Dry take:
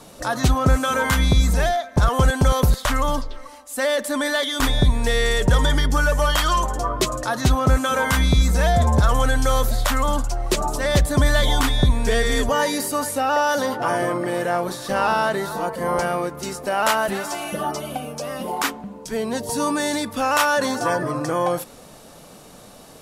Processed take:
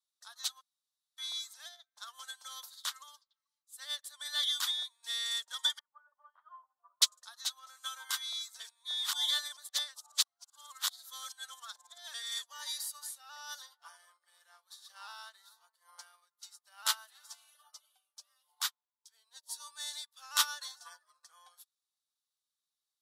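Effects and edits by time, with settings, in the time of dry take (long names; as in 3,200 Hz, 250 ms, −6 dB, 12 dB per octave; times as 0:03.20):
0:00.61–0:01.18: fill with room tone
0:05.79–0:07.02: low-pass filter 1,200 Hz 24 dB per octave
0:08.60–0:12.14: reverse
whole clip: high-pass filter 1,100 Hz 24 dB per octave; high shelf with overshoot 3,000 Hz +6 dB, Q 3; expander for the loud parts 2.5 to 1, over −41 dBFS; level −7 dB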